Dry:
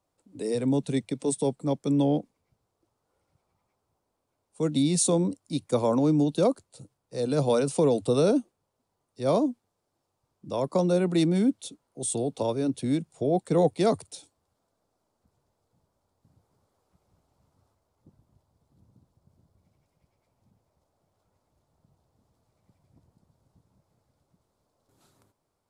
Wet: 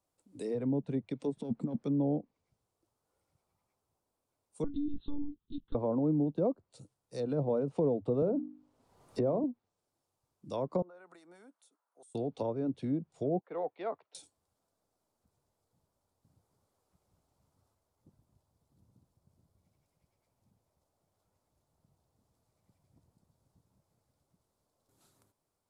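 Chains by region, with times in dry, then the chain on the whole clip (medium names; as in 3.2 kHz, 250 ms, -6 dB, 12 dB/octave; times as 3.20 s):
1.37–1.84 s: self-modulated delay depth 0.056 ms + compressor with a negative ratio -33 dBFS + peaking EQ 230 Hz +13 dB 0.52 oct
4.64–5.75 s: monotone LPC vocoder at 8 kHz 290 Hz + peaking EQ 1.2 kHz -9 dB 2.4 oct + static phaser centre 2.3 kHz, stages 6
8.22–9.44 s: treble shelf 4.6 kHz -11 dB + hum notches 50/100/150/200/250/300/350 Hz + three bands compressed up and down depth 100%
10.82–12.15 s: high-pass 970 Hz + compression 4:1, threshold -47 dBFS + resonant high shelf 2 kHz -13 dB, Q 1.5
13.41–14.15 s: band-pass 660–2900 Hz + distance through air 360 m
whole clip: low-pass that closes with the level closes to 730 Hz, closed at -21.5 dBFS; treble shelf 6.7 kHz +7.5 dB; trim -6.5 dB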